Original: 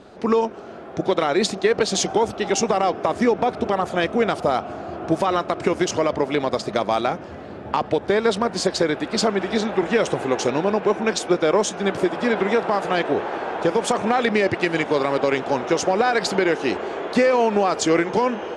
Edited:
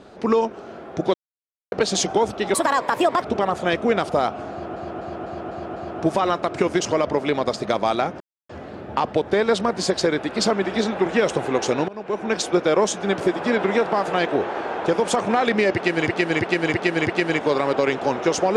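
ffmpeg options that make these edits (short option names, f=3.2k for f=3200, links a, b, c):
-filter_complex "[0:a]asplit=16[a][b][c][d][e][f][g][h][i][j][k][l][m][n][o][p];[a]atrim=end=1.14,asetpts=PTS-STARTPTS,afade=t=out:st=1.136:d=0.004:c=hsin[q];[b]atrim=start=1.14:end=1.72,asetpts=PTS-STARTPTS,volume=0[r];[c]atrim=start=1.72:end=2.544,asetpts=PTS-STARTPTS,afade=t=in:d=0.004:c=hsin[s];[d]atrim=start=2.54:end=3.53,asetpts=PTS-STARTPTS,asetrate=63945,aresample=44100[t];[e]atrim=start=3.526:end=5.072[u];[f]atrim=start=4.818:end=5.072[v];[g]atrim=start=4.818:end=5.072[w];[h]atrim=start=4.818:end=5.072[x];[i]atrim=start=4.818:end=5.072[y];[j]atrim=start=4.818:end=7.26,asetpts=PTS-STARTPTS,afade=t=out:st=2.438:d=0.004:c=hsin,apad=pad_dur=0.29[z];[k]atrim=start=7.26:end=10.65,asetpts=PTS-STARTPTS,afade=t=in:d=0.004:c=hsin,afade=t=out:st=3.386:d=0.004:c=hsin:silence=0.0630957[aa];[l]atrim=start=10.65:end=14.842,asetpts=PTS-STARTPTS,afade=t=in:d=0.52:silence=0.0630957[ab];[m]atrim=start=14.508:end=14.842[ac];[n]atrim=start=14.508:end=14.842[ad];[o]atrim=start=14.508:end=14.842[ae];[p]atrim=start=14.508[af];[q][r][s]concat=n=3:v=0:a=1[ag];[ag][t]acrossfade=d=0.004:c1=hsin:c2=hsin[ah];[ah][u]acrossfade=d=0.004:c1=hsin:c2=hsin[ai];[ai][v]acrossfade=d=0.004:c1=hsin:c2=hsin[aj];[aj][w]acrossfade=d=0.004:c1=hsin:c2=hsin[ak];[ak][x]acrossfade=d=0.004:c1=hsin:c2=hsin[al];[al][y]acrossfade=d=0.004:c1=hsin:c2=hsin[am];[z][aa][ab]concat=n=3:v=0:a=1[an];[am][an]acrossfade=d=0.004:c1=hsin:c2=hsin[ao];[ao][ac]acrossfade=d=0.004:c1=hsin:c2=hsin[ap];[ap][ad]acrossfade=d=0.004:c1=hsin:c2=hsin[aq];[aq][ae]acrossfade=d=0.004:c1=hsin:c2=hsin[ar];[ar][af]acrossfade=d=0.004:c1=hsin:c2=hsin"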